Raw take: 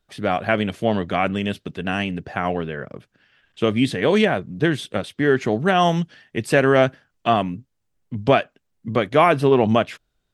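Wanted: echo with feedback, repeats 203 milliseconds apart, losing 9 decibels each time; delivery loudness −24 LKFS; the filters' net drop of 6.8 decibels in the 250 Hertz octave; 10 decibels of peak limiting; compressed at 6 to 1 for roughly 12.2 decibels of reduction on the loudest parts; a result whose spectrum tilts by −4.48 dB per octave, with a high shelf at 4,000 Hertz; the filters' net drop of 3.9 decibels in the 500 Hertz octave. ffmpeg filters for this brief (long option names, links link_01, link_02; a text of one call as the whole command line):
ffmpeg -i in.wav -af "equalizer=frequency=250:width_type=o:gain=-8.5,equalizer=frequency=500:width_type=o:gain=-3,highshelf=frequency=4000:gain=6.5,acompressor=threshold=-26dB:ratio=6,alimiter=limit=-19.5dB:level=0:latency=1,aecho=1:1:203|406|609|812:0.355|0.124|0.0435|0.0152,volume=9dB" out.wav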